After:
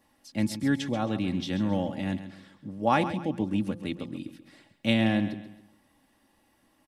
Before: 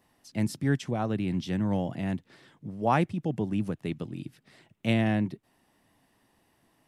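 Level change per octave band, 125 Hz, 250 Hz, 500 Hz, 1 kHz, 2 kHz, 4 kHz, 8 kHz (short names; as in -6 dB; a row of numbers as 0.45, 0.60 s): -3.0 dB, +1.5 dB, +0.5 dB, +1.0 dB, +2.5 dB, +6.0 dB, n/a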